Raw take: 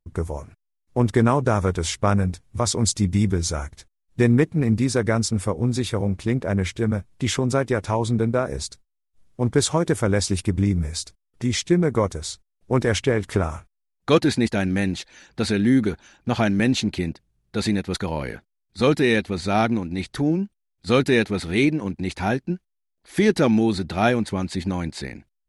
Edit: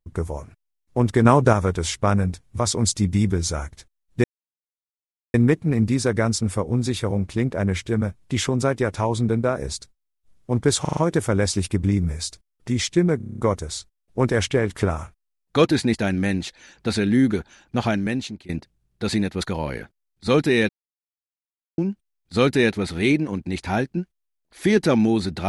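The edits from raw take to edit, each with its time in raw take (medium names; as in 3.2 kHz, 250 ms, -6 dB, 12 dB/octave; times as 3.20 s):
1.25–1.53 s: gain +4.5 dB
4.24 s: insert silence 1.10 s
9.71 s: stutter 0.04 s, 5 plays
11.91 s: stutter 0.03 s, 8 plays
16.31–17.02 s: fade out linear, to -23 dB
19.22–20.31 s: mute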